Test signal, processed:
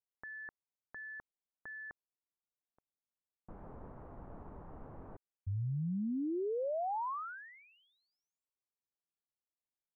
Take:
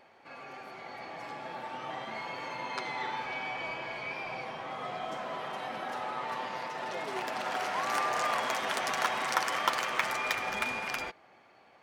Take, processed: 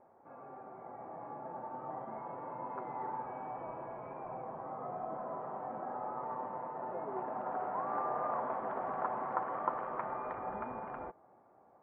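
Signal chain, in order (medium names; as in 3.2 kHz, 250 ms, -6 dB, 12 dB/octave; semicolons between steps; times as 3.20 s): low-pass 1.1 kHz 24 dB/octave; trim -2 dB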